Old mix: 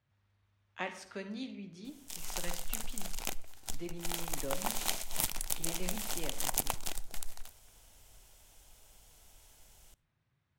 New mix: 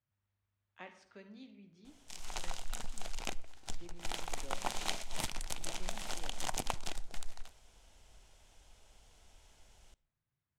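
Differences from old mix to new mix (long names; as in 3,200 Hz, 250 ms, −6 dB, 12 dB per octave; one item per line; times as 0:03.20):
speech −11.5 dB
master: add high-frequency loss of the air 68 metres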